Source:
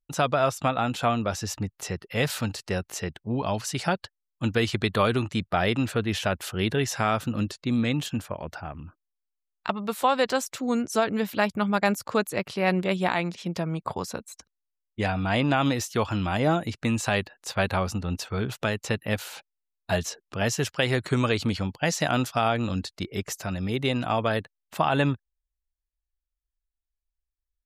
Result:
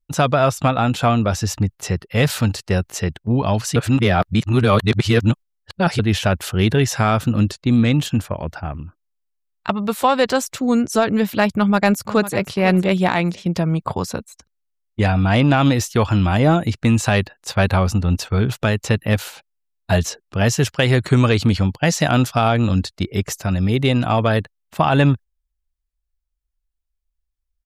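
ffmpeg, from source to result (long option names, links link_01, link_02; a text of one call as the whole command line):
ffmpeg -i in.wav -filter_complex "[0:a]asplit=2[link_01][link_02];[link_02]afade=type=in:start_time=11.53:duration=0.01,afade=type=out:start_time=12.48:duration=0.01,aecho=0:1:500|1000:0.188365|0.037673[link_03];[link_01][link_03]amix=inputs=2:normalize=0,asplit=3[link_04][link_05][link_06];[link_04]atrim=end=3.762[link_07];[link_05]atrim=start=3.758:end=5.992,asetpts=PTS-STARTPTS,areverse[link_08];[link_06]atrim=start=5.988[link_09];[link_07][link_08]acrossfade=duration=0.004:curve1=hsin:curve2=hsin[link_10];[link_10][link_09]acrossfade=duration=0.004:curve1=hsin:curve2=hsin,agate=range=-6dB:threshold=-38dB:ratio=16:detection=peak,lowshelf=frequency=170:gain=9,acontrast=64" out.wav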